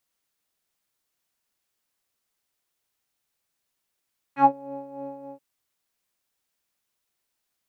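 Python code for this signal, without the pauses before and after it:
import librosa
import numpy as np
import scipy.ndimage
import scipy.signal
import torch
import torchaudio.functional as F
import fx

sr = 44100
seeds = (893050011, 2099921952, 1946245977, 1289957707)

y = fx.sub_patch_tremolo(sr, seeds[0], note=61, wave='saw', wave2='square', interval_st=19, detune_cents=14, level2_db=-5.0, sub_db=-20, noise_db=-30.0, kind='lowpass', cutoff_hz=540.0, q=3.3, env_oct=2.0, env_decay_s=0.13, env_sustain_pct=5, attack_ms=86.0, decay_s=0.08, sustain_db=-16.5, release_s=0.14, note_s=0.89, lfo_hz=3.3, tremolo_db=8.5)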